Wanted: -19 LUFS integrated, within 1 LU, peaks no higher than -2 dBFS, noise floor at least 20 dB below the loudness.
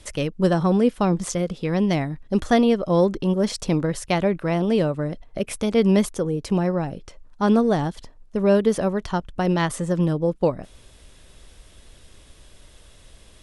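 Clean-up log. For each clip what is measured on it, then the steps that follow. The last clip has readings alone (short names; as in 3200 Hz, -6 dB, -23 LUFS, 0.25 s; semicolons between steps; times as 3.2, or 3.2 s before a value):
loudness -22.0 LUFS; peak -6.5 dBFS; loudness target -19.0 LUFS
-> gain +3 dB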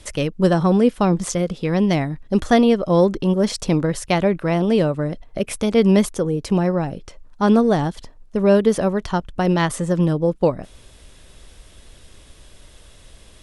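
loudness -19.0 LUFS; peak -3.5 dBFS; noise floor -48 dBFS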